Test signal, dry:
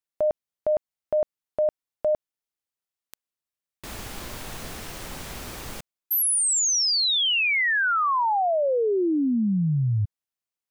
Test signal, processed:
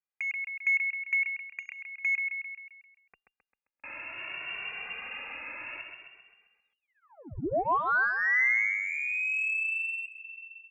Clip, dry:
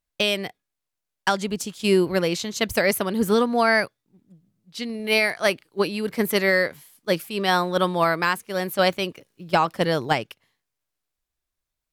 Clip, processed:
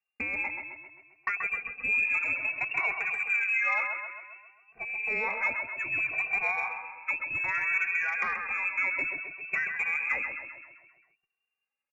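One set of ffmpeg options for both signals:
ffmpeg -i in.wav -filter_complex "[0:a]equalizer=frequency=460:width=0.45:gain=3,acompressor=threshold=-21dB:ratio=6:attack=6.6:release=96:knee=1:detection=rms,lowpass=frequency=2400:width_type=q:width=0.5098,lowpass=frequency=2400:width_type=q:width=0.6013,lowpass=frequency=2400:width_type=q:width=0.9,lowpass=frequency=2400:width_type=q:width=2.563,afreqshift=-2800,asplit=2[link_01][link_02];[link_02]aecho=0:1:132|264|396|528|660|792|924:0.501|0.271|0.146|0.0789|0.0426|0.023|0.0124[link_03];[link_01][link_03]amix=inputs=2:normalize=0,acontrast=82,asplit=2[link_04][link_05];[link_05]adelay=2.1,afreqshift=0.61[link_06];[link_04][link_06]amix=inputs=2:normalize=1,volume=-8.5dB" out.wav

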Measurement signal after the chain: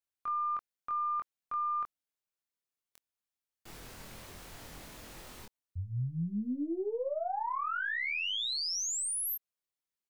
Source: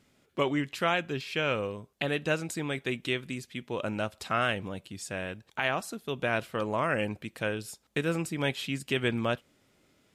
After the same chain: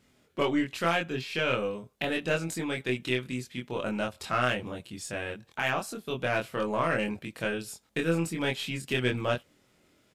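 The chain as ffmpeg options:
ffmpeg -i in.wav -filter_complex "[0:a]aeval=exprs='0.224*(cos(1*acos(clip(val(0)/0.224,-1,1)))-cos(1*PI/2))+0.00708*(cos(4*acos(clip(val(0)/0.224,-1,1)))-cos(4*PI/2))+0.00562*(cos(5*acos(clip(val(0)/0.224,-1,1)))-cos(5*PI/2))+0.0141*(cos(6*acos(clip(val(0)/0.224,-1,1)))-cos(6*PI/2))+0.00251*(cos(8*acos(clip(val(0)/0.224,-1,1)))-cos(8*PI/2))':channel_layout=same,asplit=2[link_01][link_02];[link_02]adelay=24,volume=-2dB[link_03];[link_01][link_03]amix=inputs=2:normalize=0,volume=-2dB" out.wav

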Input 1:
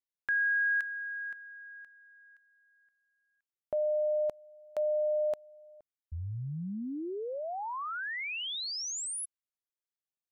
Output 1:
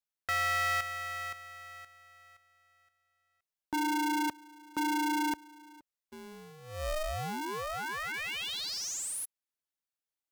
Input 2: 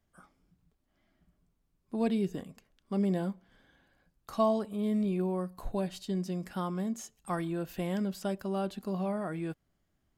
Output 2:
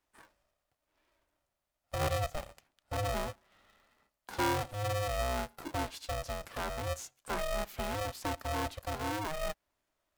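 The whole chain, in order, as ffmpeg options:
ffmpeg -i in.wav -filter_complex "[0:a]lowshelf=frequency=210:width_type=q:width=3:gain=-7,aeval=exprs='(tanh(17.8*val(0)+0.05)-tanh(0.05))/17.8':channel_layout=same,acrossover=split=280[link_01][link_02];[link_01]aeval=exprs='sgn(val(0))*max(abs(val(0))-0.00126,0)':channel_layout=same[link_03];[link_03][link_02]amix=inputs=2:normalize=0,aeval=exprs='val(0)*sgn(sin(2*PI*310*n/s))':channel_layout=same" out.wav

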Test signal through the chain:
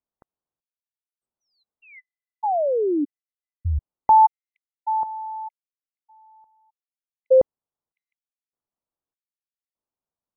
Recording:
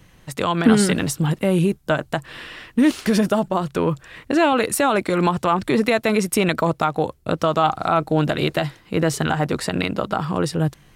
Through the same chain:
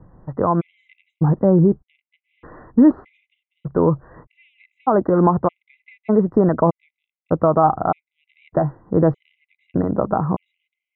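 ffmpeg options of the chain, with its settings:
ffmpeg -i in.wav -af "lowpass=frequency=1100:width=0.5412,lowpass=frequency=1100:width=1.3066,afftfilt=real='re*gt(sin(2*PI*0.82*pts/sr)*(1-2*mod(floor(b*sr/1024/2000),2)),0)':imag='im*gt(sin(2*PI*0.82*pts/sr)*(1-2*mod(floor(b*sr/1024/2000),2)),0)':win_size=1024:overlap=0.75,volume=4.5dB" out.wav

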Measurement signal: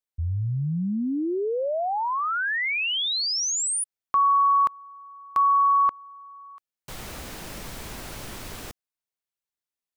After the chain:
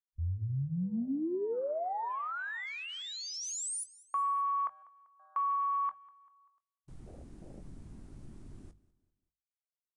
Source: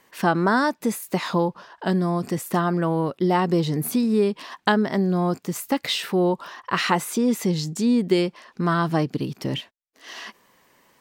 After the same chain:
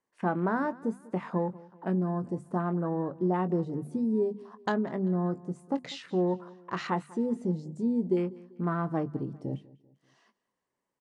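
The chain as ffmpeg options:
ffmpeg -i in.wav -filter_complex "[0:a]afwtdn=0.0224,equalizer=frequency=3200:width_type=o:width=2.4:gain=-9.5,bandreject=frequency=50:width_type=h:width=6,bandreject=frequency=100:width_type=h:width=6,bandreject=frequency=150:width_type=h:width=6,bandreject=frequency=200:width_type=h:width=6,bandreject=frequency=250:width_type=h:width=6,asplit=2[link_01][link_02];[link_02]adelay=22,volume=-13dB[link_03];[link_01][link_03]amix=inputs=2:normalize=0,asplit=2[link_04][link_05];[link_05]aecho=0:1:195|390|585:0.0891|0.0374|0.0157[link_06];[link_04][link_06]amix=inputs=2:normalize=0,aresample=22050,aresample=44100,volume=-7dB" out.wav

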